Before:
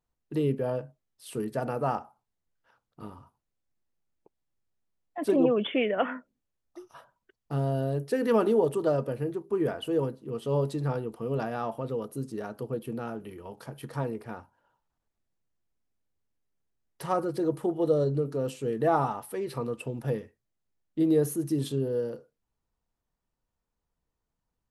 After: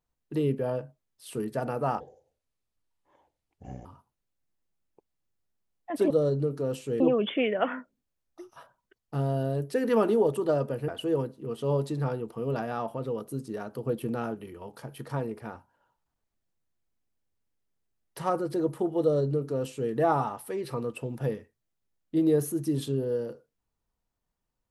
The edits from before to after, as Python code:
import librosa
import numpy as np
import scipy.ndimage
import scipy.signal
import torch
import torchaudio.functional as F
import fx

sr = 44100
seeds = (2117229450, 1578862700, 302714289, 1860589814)

y = fx.edit(x, sr, fx.speed_span(start_s=2.0, length_s=1.13, speed=0.61),
    fx.cut(start_s=9.26, length_s=0.46),
    fx.clip_gain(start_s=12.67, length_s=0.51, db=3.5),
    fx.duplicate(start_s=17.85, length_s=0.9, to_s=5.38), tone=tone)